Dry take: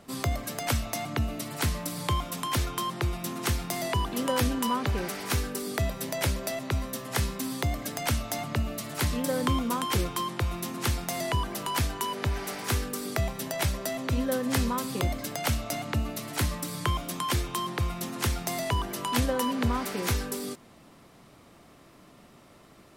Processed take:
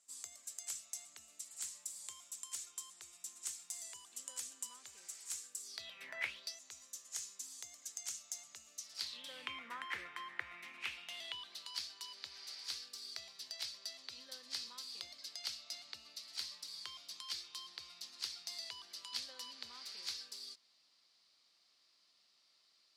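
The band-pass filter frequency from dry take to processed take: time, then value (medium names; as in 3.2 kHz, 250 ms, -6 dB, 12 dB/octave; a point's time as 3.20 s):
band-pass filter, Q 5
5.61 s 7.4 kHz
6.15 s 1.6 kHz
6.59 s 6.8 kHz
8.73 s 6.8 kHz
9.69 s 1.9 kHz
10.47 s 1.9 kHz
11.73 s 4.6 kHz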